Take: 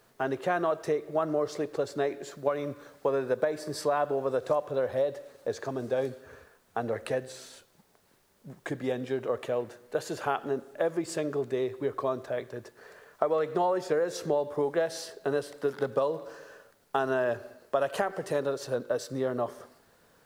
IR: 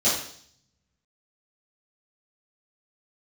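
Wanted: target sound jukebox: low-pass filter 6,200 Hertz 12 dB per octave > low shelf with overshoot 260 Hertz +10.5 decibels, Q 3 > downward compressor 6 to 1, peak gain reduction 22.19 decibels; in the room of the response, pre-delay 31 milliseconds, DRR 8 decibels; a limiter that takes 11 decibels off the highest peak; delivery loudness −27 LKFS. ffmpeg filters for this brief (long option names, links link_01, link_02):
-filter_complex "[0:a]alimiter=limit=-22.5dB:level=0:latency=1,asplit=2[link_01][link_02];[1:a]atrim=start_sample=2205,adelay=31[link_03];[link_02][link_03]afir=irnorm=-1:irlink=0,volume=-22.5dB[link_04];[link_01][link_04]amix=inputs=2:normalize=0,lowpass=6200,lowshelf=frequency=260:width_type=q:width=3:gain=10.5,acompressor=threshold=-44dB:ratio=6,volume=20.5dB"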